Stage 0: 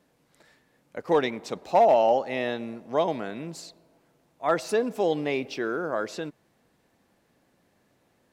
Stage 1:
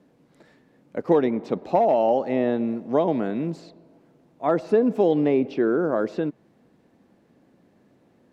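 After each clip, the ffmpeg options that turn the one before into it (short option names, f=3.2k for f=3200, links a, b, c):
-filter_complex "[0:a]highshelf=f=6.7k:g=-9,acrossover=split=1500|3900[a][b][c];[a]acompressor=threshold=-22dB:ratio=4[d];[b]acompressor=threshold=-44dB:ratio=4[e];[c]acompressor=threshold=-60dB:ratio=4[f];[d][e][f]amix=inputs=3:normalize=0,equalizer=f=250:w=0.52:g=11"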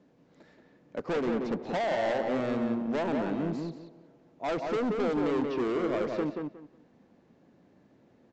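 -filter_complex "[0:a]aresample=16000,asoftclip=type=hard:threshold=-24dB,aresample=44100,asplit=2[a][b];[b]adelay=181,lowpass=f=2.5k:p=1,volume=-3.5dB,asplit=2[c][d];[d]adelay=181,lowpass=f=2.5k:p=1,volume=0.21,asplit=2[e][f];[f]adelay=181,lowpass=f=2.5k:p=1,volume=0.21[g];[a][c][e][g]amix=inputs=4:normalize=0,volume=-3.5dB"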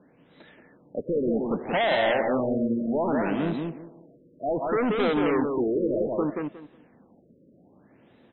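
-af "crystalizer=i=5.5:c=0,afftfilt=real='re*lt(b*sr/1024,590*pow(4100/590,0.5+0.5*sin(2*PI*0.64*pts/sr)))':imag='im*lt(b*sr/1024,590*pow(4100/590,0.5+0.5*sin(2*PI*0.64*pts/sr)))':win_size=1024:overlap=0.75,volume=4dB"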